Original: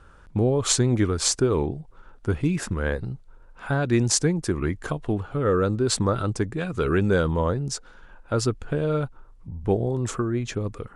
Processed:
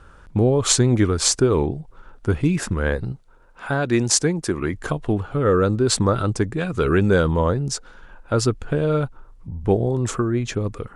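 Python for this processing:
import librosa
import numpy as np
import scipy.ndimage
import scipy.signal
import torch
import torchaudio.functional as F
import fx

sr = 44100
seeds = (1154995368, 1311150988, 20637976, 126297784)

y = fx.low_shelf(x, sr, hz=140.0, db=-9.5, at=(3.12, 4.73))
y = y * 10.0 ** (4.0 / 20.0)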